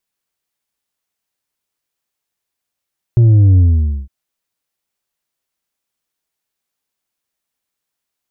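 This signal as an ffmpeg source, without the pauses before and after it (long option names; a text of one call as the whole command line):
ffmpeg -f lavfi -i "aevalsrc='0.501*clip((0.91-t)/0.5,0,1)*tanh(1.68*sin(2*PI*120*0.91/log(65/120)*(exp(log(65/120)*t/0.91)-1)))/tanh(1.68)':duration=0.91:sample_rate=44100" out.wav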